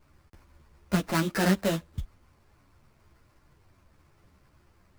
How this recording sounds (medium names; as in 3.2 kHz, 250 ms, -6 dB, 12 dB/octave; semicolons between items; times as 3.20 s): aliases and images of a low sample rate 3.4 kHz, jitter 20%; a shimmering, thickened sound